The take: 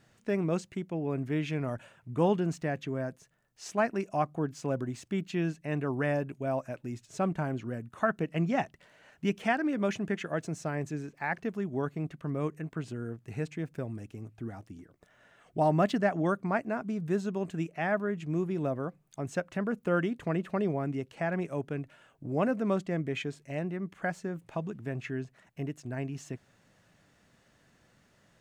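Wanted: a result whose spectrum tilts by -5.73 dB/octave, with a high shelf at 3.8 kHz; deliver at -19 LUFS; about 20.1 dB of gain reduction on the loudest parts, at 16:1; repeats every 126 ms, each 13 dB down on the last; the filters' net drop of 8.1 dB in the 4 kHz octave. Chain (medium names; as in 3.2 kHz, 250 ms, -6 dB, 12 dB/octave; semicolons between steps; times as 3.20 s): treble shelf 3.8 kHz -6.5 dB; peaking EQ 4 kHz -8 dB; compression 16:1, threshold -42 dBFS; feedback delay 126 ms, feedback 22%, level -13 dB; trim +28.5 dB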